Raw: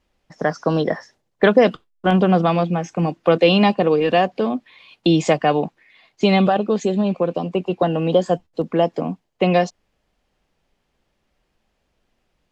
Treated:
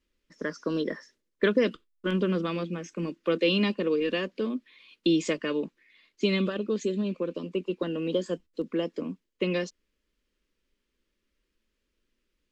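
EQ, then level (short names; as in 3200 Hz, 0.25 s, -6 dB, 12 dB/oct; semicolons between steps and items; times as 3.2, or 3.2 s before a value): fixed phaser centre 310 Hz, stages 4; -6.5 dB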